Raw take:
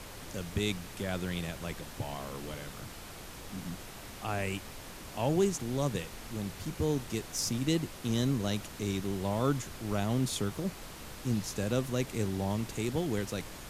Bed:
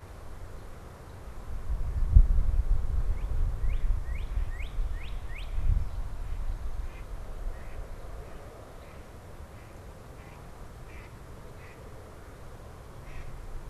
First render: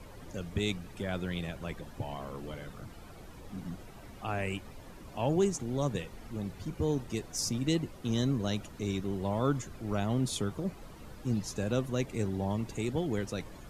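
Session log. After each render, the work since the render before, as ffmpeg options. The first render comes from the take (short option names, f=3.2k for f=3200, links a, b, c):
-af "afftdn=nr=12:nf=-46"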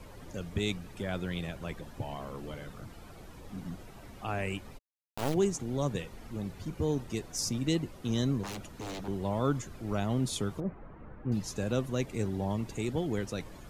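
-filter_complex "[0:a]asplit=3[a][b][c];[a]afade=t=out:st=4.77:d=0.02[d];[b]acrusher=bits=3:dc=4:mix=0:aa=0.000001,afade=t=in:st=4.77:d=0.02,afade=t=out:st=5.33:d=0.02[e];[c]afade=t=in:st=5.33:d=0.02[f];[d][e][f]amix=inputs=3:normalize=0,asettb=1/sr,asplit=3[g][h][i];[g]atrim=end=8.434[j];[h]atrim=start=8.43:end=9.08,asetpts=PTS-STARTPTS,afade=t=in:d=0.004:c=qsin,afade=t=out:st=0.646:d=0.004:c=qsin,aeval=exprs='0.0211*(abs(mod(val(0)/0.0211+3,4)-2)-1)':c=same[k];[i]atrim=start=9.076[l];[j][k]acrossfade=d=0.004:c1=hsin:c2=qsin[m];[m][l]acrossfade=d=0.004:c1=qsin:c2=hsin,asettb=1/sr,asplit=3[n][o][p];[n]atrim=end=10.604[q];[o]atrim=start=10.6:end=11.32,asetpts=PTS-STARTPTS,afade=t=in:d=0.004:c=qsin,afade=t=out:st=0.716:d=0.004:c=qsin,lowpass=f=1.9k:w=0.5412,lowpass=f=1.9k:w=1.3066[r];[p]atrim=start=11.316[s];[q][r]acrossfade=d=0.004:c1=hsin:c2=qsin[t];[t][s]acrossfade=d=0.004:c1=qsin:c2=hsin"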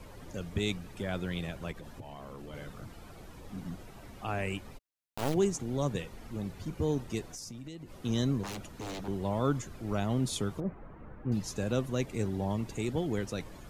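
-filter_complex "[0:a]asplit=3[a][b][c];[a]afade=t=out:st=1.71:d=0.02[d];[b]acompressor=threshold=-40dB:ratio=12:attack=3.2:release=140:knee=1:detection=peak,afade=t=in:st=1.71:d=0.02,afade=t=out:st=2.53:d=0.02[e];[c]afade=t=in:st=2.53:d=0.02[f];[d][e][f]amix=inputs=3:normalize=0,asettb=1/sr,asplit=3[g][h][i];[g]atrim=end=7.294[j];[h]atrim=start=7.29:end=8.02,asetpts=PTS-STARTPTS,afade=t=in:d=0.004:c=qsin,afade=t=out:st=0.726:d=0.004:c=qsin,acompressor=threshold=-40dB:ratio=10:attack=3.2:release=140:knee=1:detection=peak[k];[i]atrim=start=8.016[l];[j][k]acrossfade=d=0.004:c1=hsin:c2=qsin[m];[m][l]acrossfade=d=0.004:c1=qsin:c2=hsin"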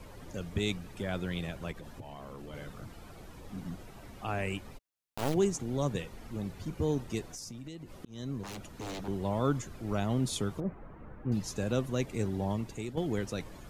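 -filter_complex "[0:a]asplit=3[a][b][c];[a]atrim=end=8.05,asetpts=PTS-STARTPTS,afade=t=out:st=8.046:d=0.004:c=hsin[d];[b]atrim=start=8.05:end=12.97,asetpts=PTS-STARTPTS,afade=t=in:d=0.91:c=qsin,afade=t=out:st=4.46:d=0.46:silence=0.398107[e];[c]atrim=start=12.97,asetpts=PTS-STARTPTS,afade=t=in:d=0.004:c=hsin:silence=0.398107[f];[d][e][f]concat=n=3:v=0:a=1"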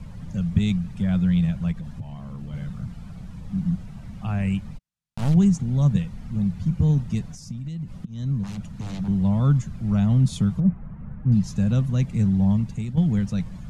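-af "lowpass=9.4k,lowshelf=f=250:t=q:w=3:g=11"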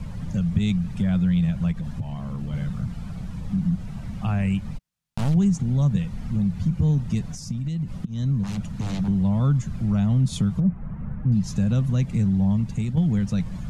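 -filter_complex "[0:a]asplit=2[a][b];[b]alimiter=limit=-19.5dB:level=0:latency=1:release=83,volume=-2dB[c];[a][c]amix=inputs=2:normalize=0,acompressor=threshold=-24dB:ratio=1.5"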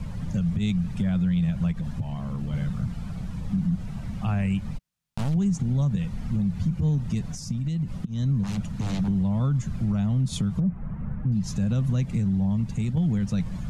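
-af "alimiter=limit=-17.5dB:level=0:latency=1:release=84"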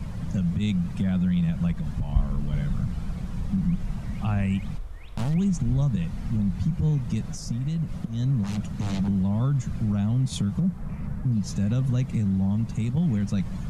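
-filter_complex "[1:a]volume=-5dB[a];[0:a][a]amix=inputs=2:normalize=0"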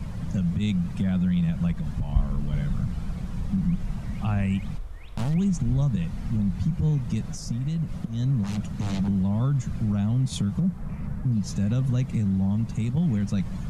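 -af anull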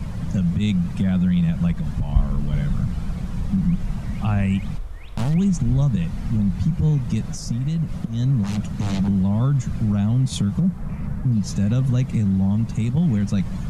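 -af "volume=4.5dB"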